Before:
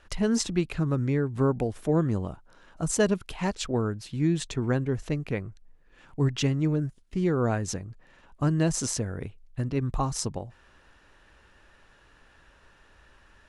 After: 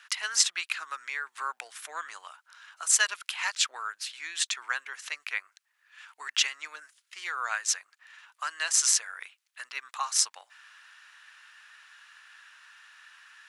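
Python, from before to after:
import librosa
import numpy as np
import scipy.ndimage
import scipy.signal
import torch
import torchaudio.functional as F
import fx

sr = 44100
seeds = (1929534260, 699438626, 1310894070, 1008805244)

y = scipy.signal.sosfilt(scipy.signal.butter(4, 1300.0, 'highpass', fs=sr, output='sos'), x)
y = F.gain(torch.from_numpy(y), 8.5).numpy()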